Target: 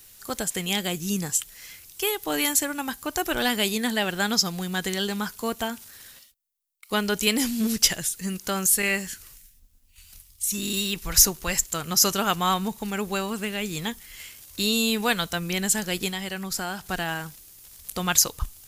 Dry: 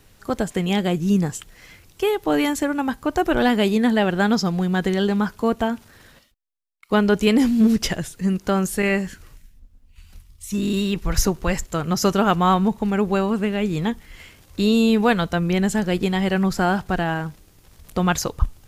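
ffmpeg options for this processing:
ffmpeg -i in.wav -filter_complex "[0:a]asettb=1/sr,asplit=3[link_01][link_02][link_03];[link_01]atrim=end=16.094[link_04];[link_02]atrim=start=16.09:end=16.84,asetpts=PTS-STARTPTS,afade=type=in:duration=0.004:curve=qsin,afade=type=out:start_time=0.746:duration=0.004:curve=qsin,acompressor=threshold=-25dB:ratio=2[link_05];[link_03]atrim=start=16.836[link_06];[link_04][link_05]acrossfade=duration=0.004:curve1=hsin:curve2=qsin[link_07];[link_07][link_06]acrossfade=duration=0.004:curve1=qsin:curve2=hsin,crystalizer=i=9:c=0,volume=-10dB" out.wav

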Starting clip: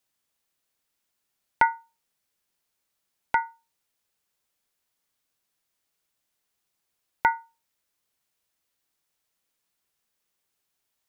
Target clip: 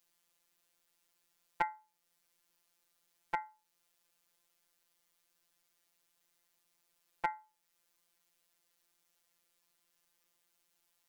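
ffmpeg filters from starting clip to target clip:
ffmpeg -i in.wav -af "equalizer=frequency=170:width_type=o:width=0.54:gain=-3.5,afftfilt=real='hypot(re,im)*cos(PI*b)':imag='0':win_size=1024:overlap=0.75,acompressor=threshold=-55dB:ratio=1.5,volume=5.5dB" out.wav

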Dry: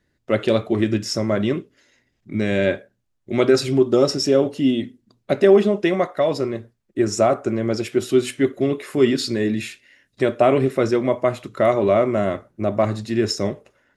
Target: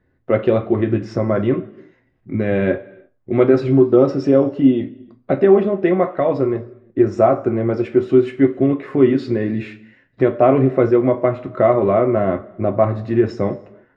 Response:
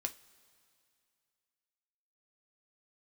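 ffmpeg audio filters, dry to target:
-filter_complex "[0:a]lowpass=1500,asplit=2[link_01][link_02];[link_02]acompressor=threshold=-23dB:ratio=6,volume=-2dB[link_03];[link_01][link_03]amix=inputs=2:normalize=0[link_04];[1:a]atrim=start_sample=2205,afade=type=out:start_time=0.39:duration=0.01,atrim=end_sample=17640[link_05];[link_04][link_05]afir=irnorm=-1:irlink=0,volume=1.5dB"

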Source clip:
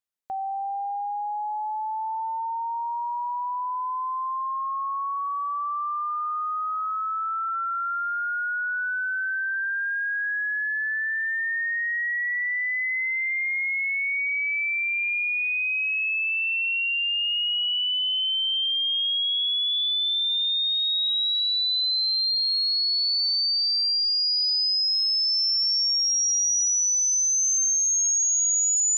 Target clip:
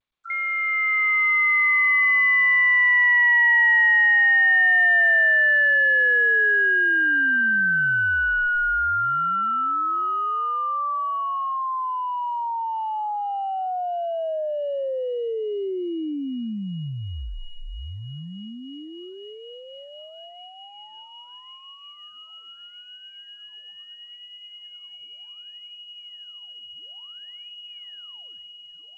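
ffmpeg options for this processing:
ffmpeg -i in.wav -filter_complex "[0:a]asplit=2[link_01][link_02];[link_02]asetrate=88200,aresample=44100,atempo=0.5,volume=-4dB[link_03];[link_01][link_03]amix=inputs=2:normalize=0,highpass=130,afftfilt=real='re*gte(hypot(re,im),0.0316)':imag='im*gte(hypot(re,im),0.0316)':win_size=1024:overlap=0.75,equalizer=frequency=500:width_type=o:width=1:gain=-10,equalizer=frequency=1000:width_type=o:width=1:gain=9,equalizer=frequency=2000:width_type=o:width=1:gain=-9,asplit=2[link_04][link_05];[link_05]aeval=exprs='clip(val(0),-1,0.0398)':channel_layout=same,volume=-12dB[link_06];[link_04][link_06]amix=inputs=2:normalize=0,dynaudnorm=framelen=120:gausssize=13:maxgain=5.5dB,lowpass=frequency=2500:width_type=q:width=0.5098,lowpass=frequency=2500:width_type=q:width=0.6013,lowpass=frequency=2500:width_type=q:width=0.9,lowpass=frequency=2500:width_type=q:width=2.563,afreqshift=-2900" -ar 16000 -c:a g722 out.g722

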